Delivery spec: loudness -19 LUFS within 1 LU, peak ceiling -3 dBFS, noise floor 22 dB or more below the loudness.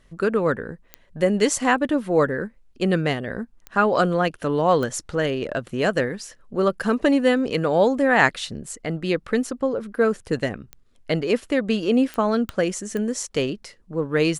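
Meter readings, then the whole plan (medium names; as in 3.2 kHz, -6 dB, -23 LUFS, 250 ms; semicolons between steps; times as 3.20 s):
clicks found 7; loudness -22.5 LUFS; peak level -2.5 dBFS; loudness target -19.0 LUFS
-> de-click; trim +3.5 dB; peak limiter -3 dBFS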